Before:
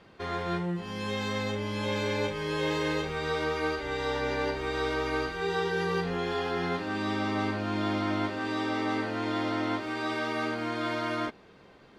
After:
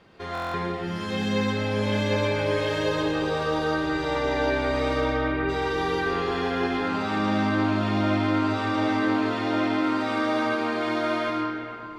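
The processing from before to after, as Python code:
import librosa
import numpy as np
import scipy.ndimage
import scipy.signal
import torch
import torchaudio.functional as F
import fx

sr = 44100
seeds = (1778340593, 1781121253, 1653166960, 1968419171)

y = fx.peak_eq(x, sr, hz=2200.0, db=-13.0, octaves=0.23, at=(2.69, 3.93))
y = fx.lowpass(y, sr, hz=2800.0, slope=24, at=(5.0, 5.48), fade=0.02)
y = fx.rev_freeverb(y, sr, rt60_s=3.1, hf_ratio=0.5, predelay_ms=65, drr_db=-3.0)
y = fx.dmg_crackle(y, sr, seeds[0], per_s=58.0, level_db=-48.0, at=(8.95, 9.48), fade=0.02)
y = fx.buffer_glitch(y, sr, at_s=(0.33,), block=1024, repeats=8)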